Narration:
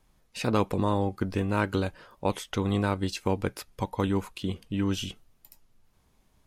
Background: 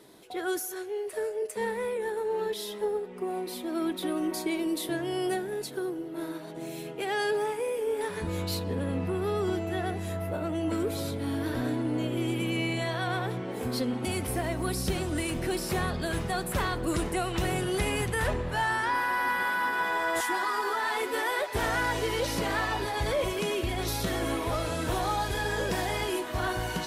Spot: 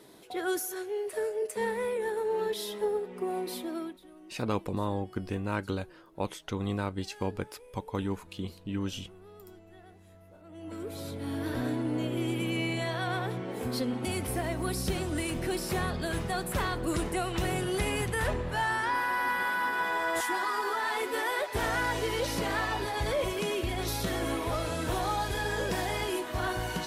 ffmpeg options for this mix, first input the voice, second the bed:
ffmpeg -i stem1.wav -i stem2.wav -filter_complex "[0:a]adelay=3950,volume=-5.5dB[link_01];[1:a]volume=21dB,afade=type=out:start_time=3.57:duration=0.42:silence=0.0749894,afade=type=in:start_time=10.43:duration=1.14:silence=0.0891251[link_02];[link_01][link_02]amix=inputs=2:normalize=0" out.wav

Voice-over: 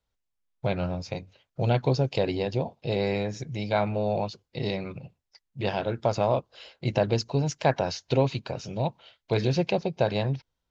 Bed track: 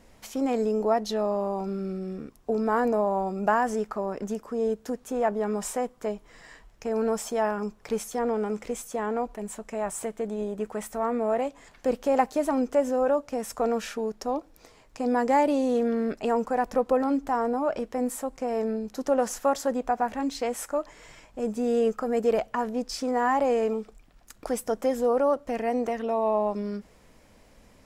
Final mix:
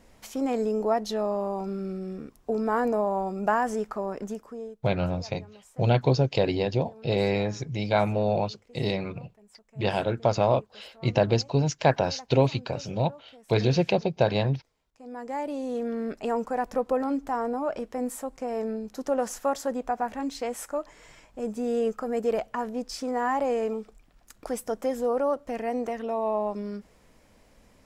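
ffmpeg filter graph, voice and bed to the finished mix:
ffmpeg -i stem1.wav -i stem2.wav -filter_complex "[0:a]adelay=4200,volume=2dB[link_01];[1:a]volume=19dB,afade=type=out:start_time=4.17:duration=0.61:silence=0.0841395,afade=type=in:start_time=14.93:duration=1.32:silence=0.1[link_02];[link_01][link_02]amix=inputs=2:normalize=0" out.wav

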